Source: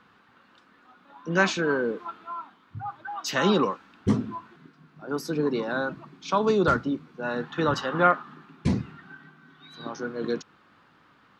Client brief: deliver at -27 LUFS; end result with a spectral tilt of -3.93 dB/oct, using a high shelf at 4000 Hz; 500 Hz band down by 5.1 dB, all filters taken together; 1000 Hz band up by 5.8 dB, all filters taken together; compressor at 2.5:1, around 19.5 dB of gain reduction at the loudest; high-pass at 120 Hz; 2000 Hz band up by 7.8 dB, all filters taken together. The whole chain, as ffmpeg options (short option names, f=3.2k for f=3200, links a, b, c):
-af "highpass=120,equalizer=f=500:t=o:g=-8,equalizer=f=1k:t=o:g=5.5,equalizer=f=2k:t=o:g=8.5,highshelf=f=4k:g=4.5,acompressor=threshold=-41dB:ratio=2.5,volume=12dB"